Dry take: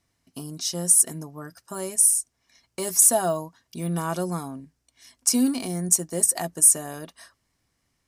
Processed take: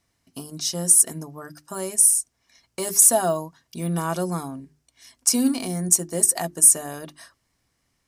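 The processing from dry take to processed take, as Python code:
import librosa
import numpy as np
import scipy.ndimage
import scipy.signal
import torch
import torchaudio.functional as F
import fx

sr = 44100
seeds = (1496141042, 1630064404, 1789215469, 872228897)

y = fx.hum_notches(x, sr, base_hz=50, count=8)
y = y * 10.0 ** (2.0 / 20.0)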